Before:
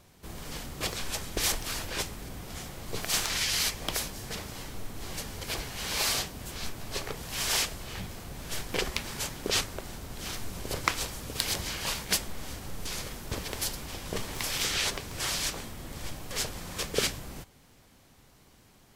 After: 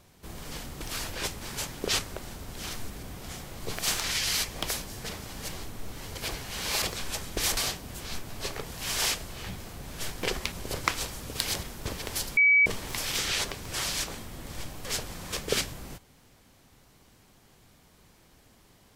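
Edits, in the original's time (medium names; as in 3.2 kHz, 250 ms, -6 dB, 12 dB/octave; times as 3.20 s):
0.82–1.57 s: move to 6.08 s
4.59–5.33 s: reverse
9.03–10.52 s: move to 2.16 s
11.63–13.09 s: delete
13.83–14.12 s: bleep 2.28 kHz -16.5 dBFS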